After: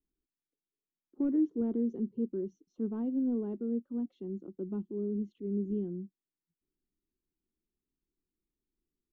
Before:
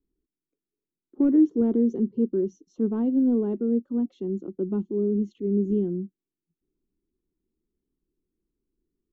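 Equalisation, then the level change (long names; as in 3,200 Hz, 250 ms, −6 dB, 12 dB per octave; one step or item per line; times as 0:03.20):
high-frequency loss of the air 120 metres
parametric band 390 Hz −2 dB
−8.5 dB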